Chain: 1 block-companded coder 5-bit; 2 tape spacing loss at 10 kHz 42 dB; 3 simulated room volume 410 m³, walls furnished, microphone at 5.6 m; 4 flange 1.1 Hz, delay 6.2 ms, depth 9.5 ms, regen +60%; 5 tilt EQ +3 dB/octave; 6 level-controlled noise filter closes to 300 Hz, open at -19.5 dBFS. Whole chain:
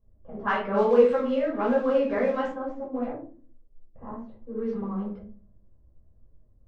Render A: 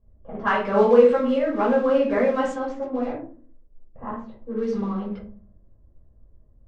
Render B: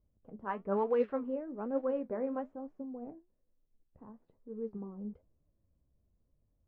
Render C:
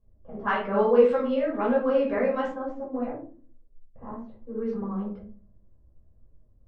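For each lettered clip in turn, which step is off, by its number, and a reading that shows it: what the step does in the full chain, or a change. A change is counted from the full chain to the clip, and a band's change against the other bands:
4, loudness change +4.0 LU; 3, momentary loudness spread change +3 LU; 1, distortion -24 dB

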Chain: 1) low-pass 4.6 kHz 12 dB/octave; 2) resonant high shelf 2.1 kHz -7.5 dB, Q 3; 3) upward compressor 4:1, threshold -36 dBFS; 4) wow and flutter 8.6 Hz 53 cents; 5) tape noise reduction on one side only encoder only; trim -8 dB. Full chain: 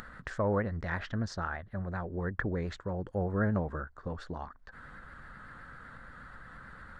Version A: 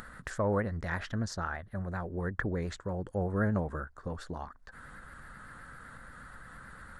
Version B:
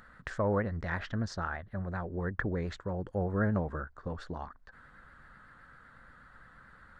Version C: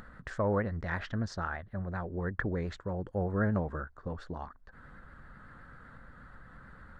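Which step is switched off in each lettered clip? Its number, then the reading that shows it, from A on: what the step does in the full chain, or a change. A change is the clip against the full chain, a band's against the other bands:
1, 4 kHz band +1.5 dB; 3, momentary loudness spread change -8 LU; 5, momentary loudness spread change +4 LU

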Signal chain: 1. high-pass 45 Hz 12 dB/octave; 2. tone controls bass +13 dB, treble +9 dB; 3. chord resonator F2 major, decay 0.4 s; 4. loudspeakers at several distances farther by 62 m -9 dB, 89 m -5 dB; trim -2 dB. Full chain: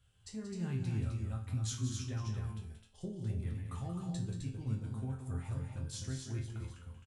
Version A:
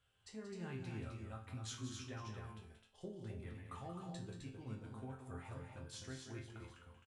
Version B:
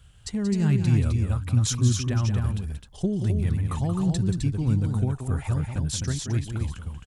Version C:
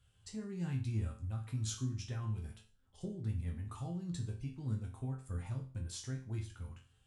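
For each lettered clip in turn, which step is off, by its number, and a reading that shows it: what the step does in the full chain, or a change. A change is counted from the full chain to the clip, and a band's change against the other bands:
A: 2, momentary loudness spread change -1 LU; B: 3, 250 Hz band +1.5 dB; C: 4, echo-to-direct -3.5 dB to none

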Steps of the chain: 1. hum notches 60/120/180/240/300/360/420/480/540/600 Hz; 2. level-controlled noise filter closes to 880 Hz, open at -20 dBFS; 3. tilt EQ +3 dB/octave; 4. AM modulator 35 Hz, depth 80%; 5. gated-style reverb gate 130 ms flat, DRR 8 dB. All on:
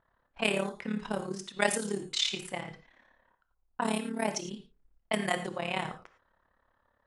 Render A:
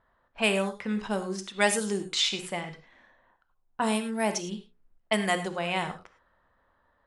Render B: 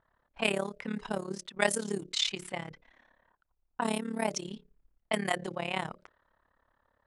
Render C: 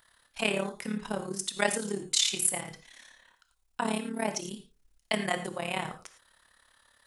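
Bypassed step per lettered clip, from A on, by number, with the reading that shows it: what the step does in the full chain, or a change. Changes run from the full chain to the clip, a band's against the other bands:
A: 4, crest factor change -4.0 dB; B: 5, momentary loudness spread change +1 LU; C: 2, 8 kHz band +8.0 dB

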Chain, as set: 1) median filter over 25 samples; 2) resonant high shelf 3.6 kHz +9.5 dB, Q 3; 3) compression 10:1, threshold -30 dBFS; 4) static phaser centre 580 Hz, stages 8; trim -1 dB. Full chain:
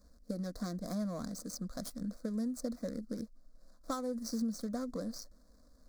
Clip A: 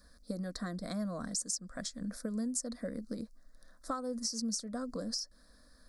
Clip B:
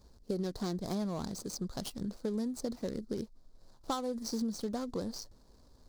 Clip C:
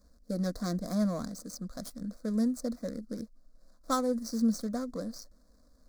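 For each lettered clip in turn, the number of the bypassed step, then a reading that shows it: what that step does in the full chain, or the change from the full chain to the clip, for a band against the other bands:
1, 8 kHz band +9.5 dB; 4, 4 kHz band +3.0 dB; 3, mean gain reduction 2.5 dB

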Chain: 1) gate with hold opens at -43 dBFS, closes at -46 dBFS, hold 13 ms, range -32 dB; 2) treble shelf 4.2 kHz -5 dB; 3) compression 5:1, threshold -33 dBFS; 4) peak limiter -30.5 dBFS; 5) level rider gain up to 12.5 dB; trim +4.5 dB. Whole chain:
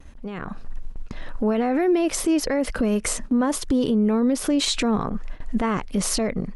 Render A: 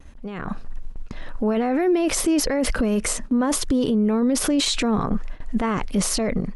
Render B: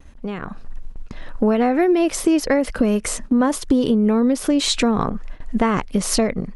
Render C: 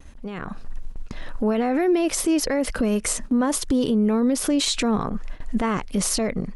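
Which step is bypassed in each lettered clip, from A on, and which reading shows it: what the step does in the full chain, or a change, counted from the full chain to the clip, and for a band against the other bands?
3, mean gain reduction 8.5 dB; 4, mean gain reduction 2.0 dB; 2, 8 kHz band +2.0 dB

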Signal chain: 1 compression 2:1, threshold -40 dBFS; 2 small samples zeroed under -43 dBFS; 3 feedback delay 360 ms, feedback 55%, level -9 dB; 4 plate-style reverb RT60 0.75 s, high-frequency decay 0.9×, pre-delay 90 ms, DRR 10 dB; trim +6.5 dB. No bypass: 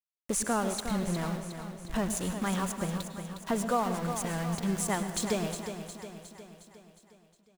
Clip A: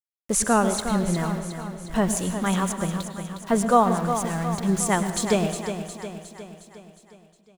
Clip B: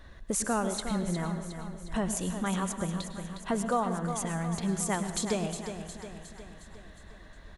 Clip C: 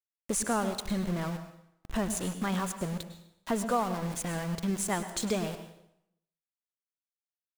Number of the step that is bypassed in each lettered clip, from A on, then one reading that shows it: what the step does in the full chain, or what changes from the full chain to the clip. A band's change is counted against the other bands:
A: 1, mean gain reduction 4.5 dB; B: 2, distortion -12 dB; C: 3, echo-to-direct -5.5 dB to -10.0 dB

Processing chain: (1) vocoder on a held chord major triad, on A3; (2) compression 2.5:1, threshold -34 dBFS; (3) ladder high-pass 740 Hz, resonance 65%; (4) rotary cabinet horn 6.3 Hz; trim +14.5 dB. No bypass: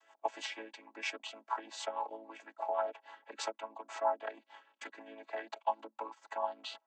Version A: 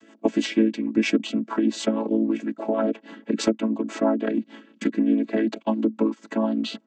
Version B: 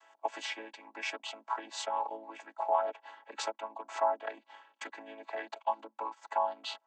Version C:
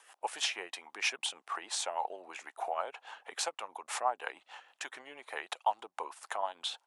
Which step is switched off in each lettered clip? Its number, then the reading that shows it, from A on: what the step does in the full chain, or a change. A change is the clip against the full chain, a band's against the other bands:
3, 250 Hz band +24.5 dB; 4, loudness change +3.5 LU; 1, 8 kHz band +10.0 dB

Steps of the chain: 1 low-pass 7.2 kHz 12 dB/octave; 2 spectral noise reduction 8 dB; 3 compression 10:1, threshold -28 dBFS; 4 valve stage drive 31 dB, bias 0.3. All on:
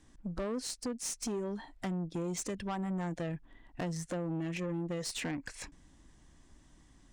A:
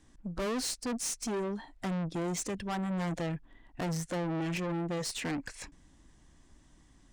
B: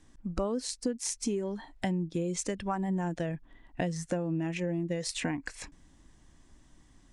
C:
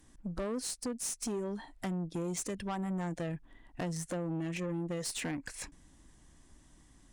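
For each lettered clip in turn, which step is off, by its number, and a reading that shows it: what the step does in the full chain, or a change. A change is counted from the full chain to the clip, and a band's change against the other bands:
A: 3, mean gain reduction 6.5 dB; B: 4, crest factor change +7.5 dB; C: 1, 8 kHz band +1.5 dB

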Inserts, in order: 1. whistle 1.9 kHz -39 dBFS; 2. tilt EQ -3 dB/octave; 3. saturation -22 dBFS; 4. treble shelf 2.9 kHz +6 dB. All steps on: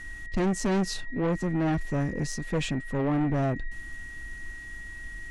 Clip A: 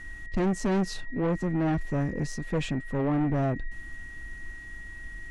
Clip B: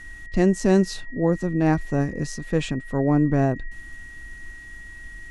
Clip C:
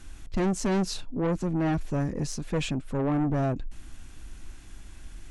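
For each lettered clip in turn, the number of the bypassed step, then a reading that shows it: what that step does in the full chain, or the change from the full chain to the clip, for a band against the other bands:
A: 4, 8 kHz band -5.0 dB; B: 3, distortion -7 dB; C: 1, 2 kHz band -6.0 dB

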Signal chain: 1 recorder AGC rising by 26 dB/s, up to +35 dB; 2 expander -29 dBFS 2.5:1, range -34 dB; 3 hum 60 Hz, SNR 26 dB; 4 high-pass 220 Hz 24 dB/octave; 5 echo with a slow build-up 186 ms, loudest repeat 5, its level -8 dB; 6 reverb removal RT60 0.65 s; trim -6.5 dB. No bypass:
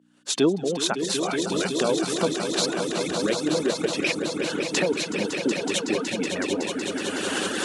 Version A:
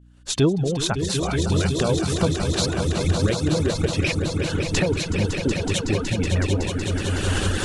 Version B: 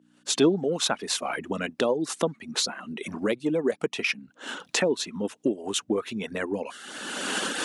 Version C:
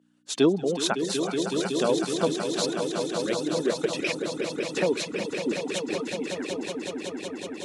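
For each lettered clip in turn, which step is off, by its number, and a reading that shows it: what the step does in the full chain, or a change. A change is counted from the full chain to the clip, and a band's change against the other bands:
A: 4, 125 Hz band +15.5 dB; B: 5, crest factor change +3.0 dB; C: 1, crest factor change +2.0 dB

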